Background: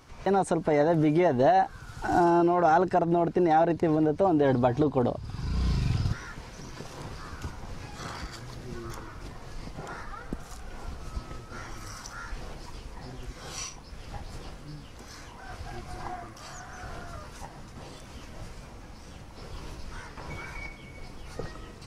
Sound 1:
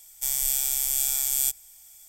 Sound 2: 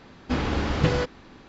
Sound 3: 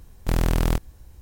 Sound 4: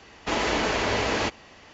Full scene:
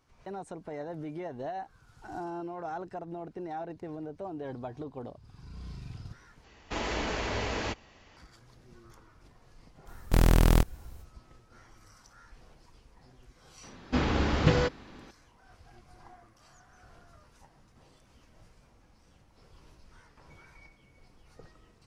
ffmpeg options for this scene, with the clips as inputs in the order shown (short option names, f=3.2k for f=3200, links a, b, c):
-filter_complex "[0:a]volume=-16dB[a];[4:a]lowshelf=f=91:g=11.5[b];[a]asplit=2[c][d];[c]atrim=end=6.444[e];[b]atrim=end=1.73,asetpts=PTS-STARTPTS,volume=-8.5dB[f];[d]atrim=start=8.166[g];[3:a]atrim=end=1.21,asetpts=PTS-STARTPTS,afade=t=in:d=0.05,afade=t=out:st=1.16:d=0.05,adelay=9850[h];[2:a]atrim=end=1.48,asetpts=PTS-STARTPTS,volume=-1.5dB,afade=t=in:d=0.004:c=hsin,afade=t=out:st=1.476:d=0.004:c=hsin,adelay=13630[i];[e][f]acrossfade=d=0.004:c1=hsin:c2=hsin[j];[j][g]acrossfade=d=0.004:c1=hsin:c2=hsin[k];[k][h][i]amix=inputs=3:normalize=0"